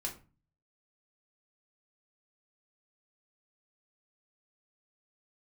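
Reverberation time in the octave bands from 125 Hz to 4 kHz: 0.75 s, 0.50 s, 0.35 s, 0.35 s, 0.30 s, 0.25 s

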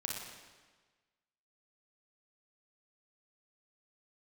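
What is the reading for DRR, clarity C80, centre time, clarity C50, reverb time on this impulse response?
-1.5 dB, 3.0 dB, 76 ms, 0.0 dB, 1.4 s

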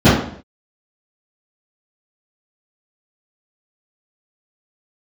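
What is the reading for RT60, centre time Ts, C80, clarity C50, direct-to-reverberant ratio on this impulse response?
0.55 s, 53 ms, 7.0 dB, 1.5 dB, -16.0 dB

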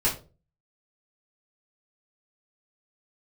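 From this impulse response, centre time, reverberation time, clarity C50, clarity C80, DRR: 22 ms, 0.35 s, 10.0 dB, 15.5 dB, -8.0 dB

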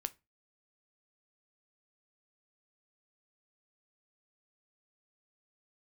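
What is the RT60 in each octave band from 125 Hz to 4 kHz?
0.35 s, 0.35 s, 0.25 s, 0.25 s, 0.25 s, 0.20 s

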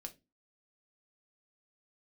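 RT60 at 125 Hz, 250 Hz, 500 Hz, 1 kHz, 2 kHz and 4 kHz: 0.35 s, 0.40 s, 0.30 s, 0.20 s, 0.20 s, 0.20 s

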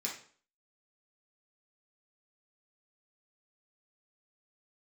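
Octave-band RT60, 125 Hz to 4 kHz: 0.45 s, 0.50 s, 0.50 s, 0.45 s, 0.45 s, 0.40 s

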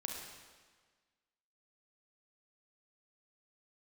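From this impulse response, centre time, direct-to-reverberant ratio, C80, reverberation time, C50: 69 ms, 0.0 dB, 3.5 dB, 1.5 s, 1.5 dB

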